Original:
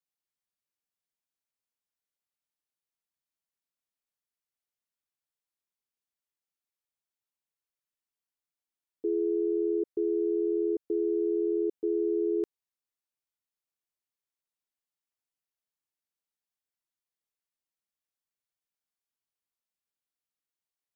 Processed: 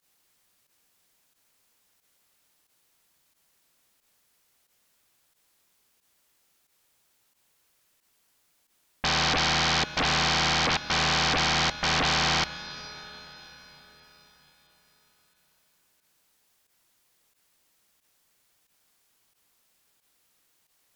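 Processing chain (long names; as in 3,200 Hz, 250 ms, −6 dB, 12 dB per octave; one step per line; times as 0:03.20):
fake sidechain pumping 90 BPM, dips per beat 1, −16 dB, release 62 ms
sine wavefolder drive 20 dB, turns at −21.5 dBFS
on a send at −13 dB: convolution reverb RT60 4.9 s, pre-delay 79 ms
on the sum: highs frequency-modulated by the lows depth 0.4 ms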